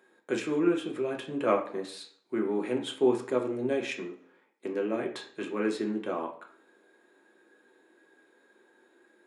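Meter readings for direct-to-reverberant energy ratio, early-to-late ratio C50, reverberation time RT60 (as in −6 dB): 1.0 dB, 9.5 dB, 0.55 s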